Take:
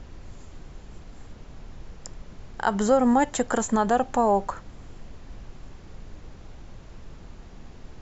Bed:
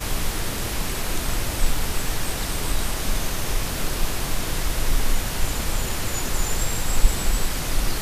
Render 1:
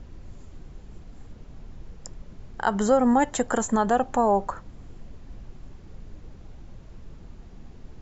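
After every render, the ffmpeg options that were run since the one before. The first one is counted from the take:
-af "afftdn=nr=6:nf=-46"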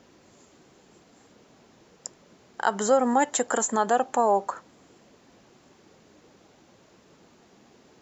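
-af "highpass=310,highshelf=f=5.7k:g=8.5"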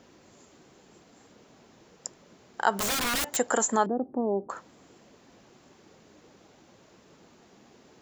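-filter_complex "[0:a]asplit=3[a][b][c];[a]afade=t=out:st=2.73:d=0.02[d];[b]aeval=exprs='(mod(14.1*val(0)+1,2)-1)/14.1':c=same,afade=t=in:st=2.73:d=0.02,afade=t=out:st=3.35:d=0.02[e];[c]afade=t=in:st=3.35:d=0.02[f];[d][e][f]amix=inputs=3:normalize=0,asettb=1/sr,asplit=3[g][h][i];[g]atrim=end=3.864[j];[h]atrim=start=3.86:end=4.5,asetpts=PTS-STARTPTS,afade=t=in:d=0.004:c=qsin,afade=t=out:st=0.636:d=0.004:c=qsin,lowpass=f=310:t=q:w=1.7[k];[i]atrim=start=4.496[l];[j][k]acrossfade=d=0.004:c1=hsin:c2=qsin[m];[m][l]acrossfade=d=0.004:c1=qsin:c2=hsin"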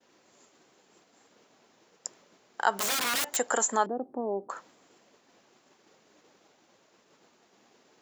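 -af "agate=range=-33dB:threshold=-52dB:ratio=3:detection=peak,highpass=f=490:p=1"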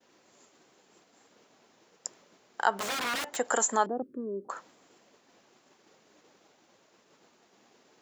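-filter_complex "[0:a]asettb=1/sr,asplit=3[a][b][c];[a]atrim=end=2.674[d];[b]atrim=start=2.67:end=3.45,asetpts=PTS-STARTPTS,afade=t=in:d=0.004:c=qsin,afade=t=out:st=0.776:d=0.004:c=qsin,lowpass=f=2.8k:p=1[e];[c]atrim=start=3.446[f];[d][e]acrossfade=d=0.004:c1=hsin:c2=qsin[g];[g][f]acrossfade=d=0.004:c1=qsin:c2=hsin,asettb=1/sr,asplit=3[h][i][j];[h]atrim=end=4.024[k];[i]atrim=start=4.02:end=4.45,asetpts=PTS-STARTPTS,afade=t=in:d=0.004:c=qsin,afade=t=out:st=0.426:d=0.004:c=qsin,asuperstop=centerf=800:order=4:qfactor=0.7[l];[j]atrim=start=4.446[m];[k][l]acrossfade=d=0.004:c1=hsin:c2=qsin[n];[n][m]acrossfade=d=0.004:c1=qsin:c2=hsin"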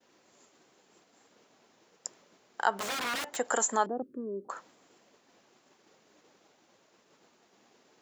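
-af "volume=-1.5dB"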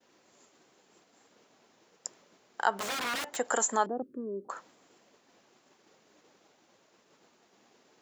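-af anull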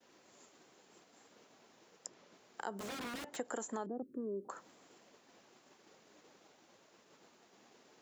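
-filter_complex "[0:a]acrossover=split=420|6500[a][b][c];[a]acompressor=threshold=-40dB:ratio=4[d];[b]acompressor=threshold=-46dB:ratio=4[e];[c]acompressor=threshold=-58dB:ratio=4[f];[d][e][f]amix=inputs=3:normalize=0"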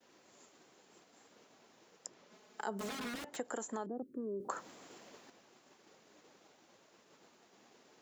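-filter_complex "[0:a]asettb=1/sr,asplit=3[a][b][c];[a]atrim=end=2.304[d];[b]atrim=start=2.3:end=3.15,asetpts=PTS-STARTPTS,afade=t=in:d=0.004:c=qsin,afade=t=out:st=0.846:d=0.004:c=qsin,aecho=1:1:4.7:0.65,atrim=end_sample=37485[e];[c]atrim=start=3.146[f];[d][e]acrossfade=d=0.004:c1=hsin:c2=qsin[g];[g][f]acrossfade=d=0.004:c1=qsin:c2=hsin,asettb=1/sr,asplit=3[h][i][j];[h]atrim=end=4.404[k];[i]atrim=start=4.4:end=5.3,asetpts=PTS-STARTPTS,afade=t=in:d=0.004:c=qsin,afade=t=out:st=0.896:d=0.004:c=qsin,acontrast=87[l];[j]atrim=start=5.296[m];[k][l]acrossfade=d=0.004:c1=hsin:c2=qsin[n];[n][m]acrossfade=d=0.004:c1=qsin:c2=hsin"

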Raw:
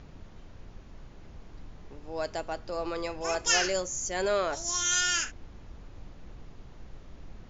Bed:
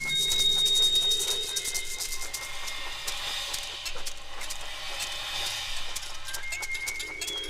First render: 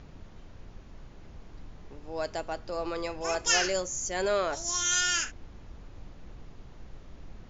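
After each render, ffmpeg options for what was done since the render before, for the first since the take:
-af anull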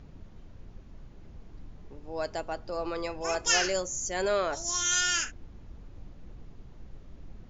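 -af "afftdn=nr=6:nf=-50"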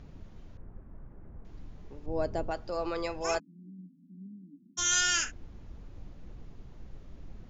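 -filter_complex "[0:a]asettb=1/sr,asplit=3[a][b][c];[a]atrim=end=0.574[d];[b]atrim=start=0.57:end=1.45,asetpts=PTS-STARTPTS,afade=t=in:d=0.004:c=qsin,afade=t=out:st=0.876:d=0.004:c=qsin,lowpass=f=1.7k:w=0.5412,lowpass=f=1.7k:w=1.3066[e];[c]atrim=start=1.446[f];[d][e]acrossfade=d=0.004:c1=hsin:c2=qsin[g];[g][f]acrossfade=d=0.004:c1=qsin:c2=hsin,asettb=1/sr,asplit=3[h][i][j];[h]atrim=end=2.064[k];[i]atrim=start=2.06:end=2.51,asetpts=PTS-STARTPTS,afade=t=in:d=0.004:c=qsin,afade=t=out:st=0.446:d=0.004:c=qsin,tiltshelf=f=730:g=9[l];[j]atrim=start=2.506[m];[k][l]acrossfade=d=0.004:c1=hsin:c2=qsin[n];[n][m]acrossfade=d=0.004:c1=qsin:c2=hsin,asplit=3[o][p][q];[o]afade=t=out:st=3.38:d=0.02[r];[p]asuperpass=centerf=220:order=12:qfactor=1.8,afade=t=in:st=3.38:d=0.02,afade=t=out:st=4.77:d=0.02[s];[q]afade=t=in:st=4.77:d=0.02[t];[r][s][t]amix=inputs=3:normalize=0"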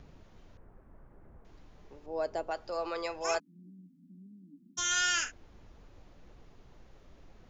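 -filter_complex "[0:a]acrossover=split=380|3700[a][b][c];[a]acompressor=threshold=-52dB:ratio=6[d];[c]alimiter=level_in=1dB:limit=-24dB:level=0:latency=1,volume=-1dB[e];[d][b][e]amix=inputs=3:normalize=0"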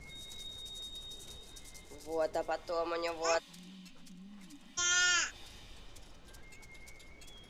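-filter_complex "[1:a]volume=-23dB[a];[0:a][a]amix=inputs=2:normalize=0"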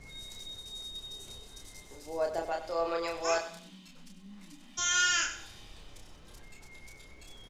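-filter_complex "[0:a]asplit=2[a][b];[b]adelay=30,volume=-3.5dB[c];[a][c]amix=inputs=2:normalize=0,aecho=1:1:96|192|288:0.251|0.0829|0.0274"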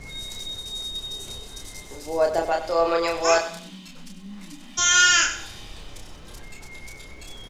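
-af "volume=10.5dB"

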